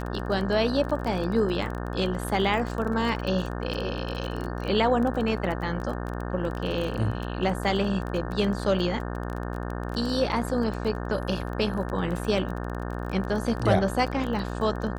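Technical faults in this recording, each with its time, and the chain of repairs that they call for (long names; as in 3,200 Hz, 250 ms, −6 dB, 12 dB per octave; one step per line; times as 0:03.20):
mains buzz 60 Hz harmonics 30 −32 dBFS
surface crackle 23 per second −30 dBFS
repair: click removal
hum removal 60 Hz, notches 30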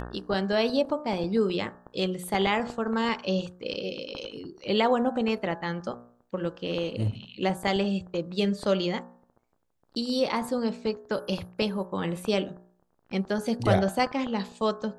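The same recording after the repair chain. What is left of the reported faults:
none of them is left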